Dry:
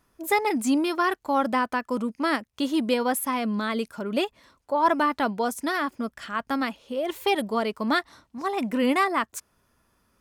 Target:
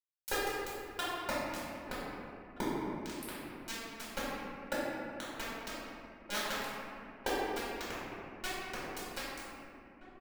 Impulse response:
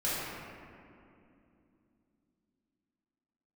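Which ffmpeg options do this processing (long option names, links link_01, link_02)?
-filter_complex "[0:a]asplit=3[link_01][link_02][link_03];[link_01]afade=type=out:start_time=1.68:duration=0.02[link_04];[link_02]lowpass=1000,afade=type=in:start_time=1.68:duration=0.02,afade=type=out:start_time=3.02:duration=0.02[link_05];[link_03]afade=type=in:start_time=3.02:duration=0.02[link_06];[link_04][link_05][link_06]amix=inputs=3:normalize=0,acompressor=threshold=-35dB:ratio=10,aeval=exprs='val(0)*gte(abs(val(0)),0.0376)':channel_layout=same,asplit=2[link_07][link_08];[link_08]adelay=1574,volume=-13dB,highshelf=frequency=4000:gain=-35.4[link_09];[link_07][link_09]amix=inputs=2:normalize=0[link_10];[1:a]atrim=start_sample=2205[link_11];[link_10][link_11]afir=irnorm=-1:irlink=0,volume=4.5dB"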